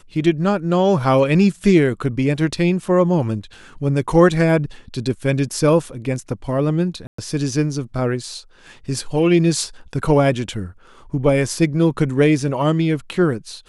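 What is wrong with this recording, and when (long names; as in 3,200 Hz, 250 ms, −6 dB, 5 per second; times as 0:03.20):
0:07.07–0:07.18: drop-out 114 ms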